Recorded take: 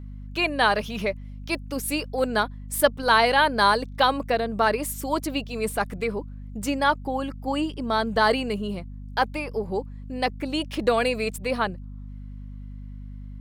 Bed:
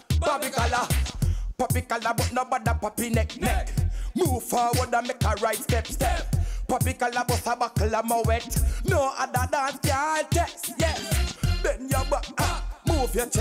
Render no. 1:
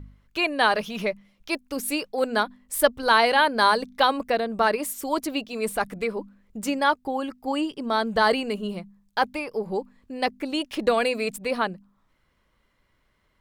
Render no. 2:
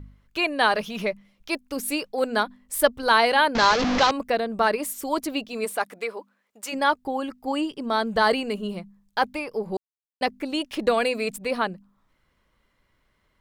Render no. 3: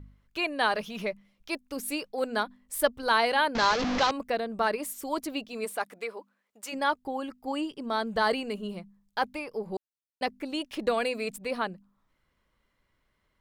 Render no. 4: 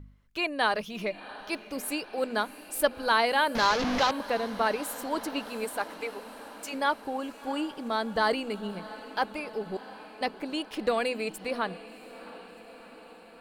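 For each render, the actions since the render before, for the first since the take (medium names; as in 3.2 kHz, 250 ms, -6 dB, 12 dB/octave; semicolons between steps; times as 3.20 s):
de-hum 50 Hz, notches 5
3.55–4.11 s: one-bit delta coder 32 kbps, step -16.5 dBFS; 5.64–6.72 s: high-pass 340 Hz -> 830 Hz; 9.77–10.21 s: mute
trim -5.5 dB
echo that smears into a reverb 705 ms, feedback 67%, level -16 dB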